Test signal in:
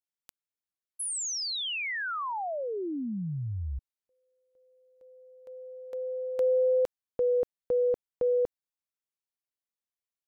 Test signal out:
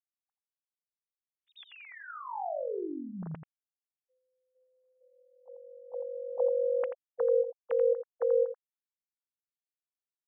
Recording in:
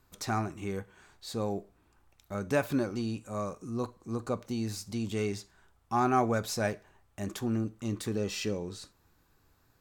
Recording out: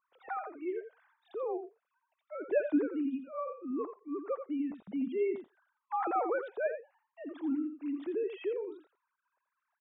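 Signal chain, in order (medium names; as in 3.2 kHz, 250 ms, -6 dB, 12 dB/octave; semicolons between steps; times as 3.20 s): formants replaced by sine waves; low-pass 1.1 kHz 6 dB/octave; delay 85 ms -9.5 dB; trim -2 dB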